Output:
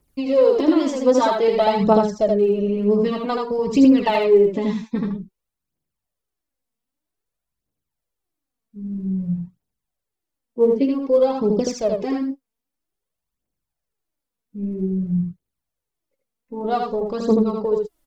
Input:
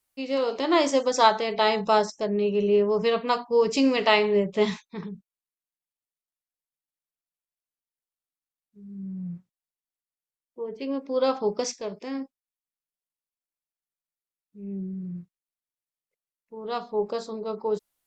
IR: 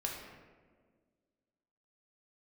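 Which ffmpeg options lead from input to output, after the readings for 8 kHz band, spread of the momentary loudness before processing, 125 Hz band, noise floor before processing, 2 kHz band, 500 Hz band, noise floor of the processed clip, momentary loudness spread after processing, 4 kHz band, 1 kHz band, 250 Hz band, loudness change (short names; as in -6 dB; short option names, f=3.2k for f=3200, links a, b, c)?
n/a, 18 LU, +10.0 dB, under -85 dBFS, -3.5 dB, +6.0 dB, -84 dBFS, 13 LU, -4.0 dB, +1.5 dB, +10.0 dB, +5.5 dB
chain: -af "tiltshelf=f=650:g=8,acompressor=threshold=-28dB:ratio=6,aphaser=in_gain=1:out_gain=1:delay=4.6:decay=0.69:speed=0.52:type=triangular,aecho=1:1:79:0.668,volume=8.5dB"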